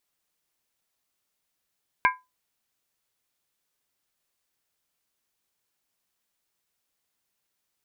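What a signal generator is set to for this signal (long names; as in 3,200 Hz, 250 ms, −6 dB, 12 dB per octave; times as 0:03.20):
struck skin, lowest mode 1,010 Hz, modes 4, decay 0.22 s, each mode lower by 2.5 dB, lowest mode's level −15 dB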